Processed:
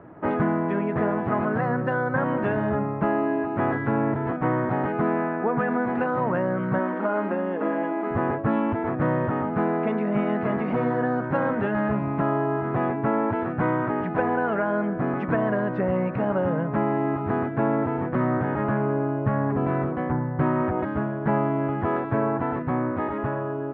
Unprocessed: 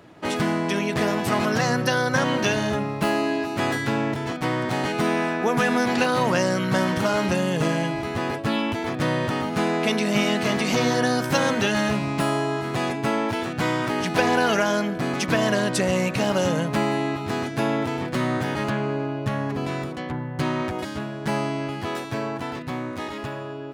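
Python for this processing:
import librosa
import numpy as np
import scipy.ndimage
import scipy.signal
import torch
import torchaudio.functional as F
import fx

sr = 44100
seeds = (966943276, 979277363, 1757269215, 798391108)

y = scipy.signal.sosfilt(scipy.signal.butter(4, 1600.0, 'lowpass', fs=sr, output='sos'), x)
y = fx.rider(y, sr, range_db=5, speed_s=0.5)
y = fx.brickwall_highpass(y, sr, low_hz=190.0, at=(6.79, 8.11))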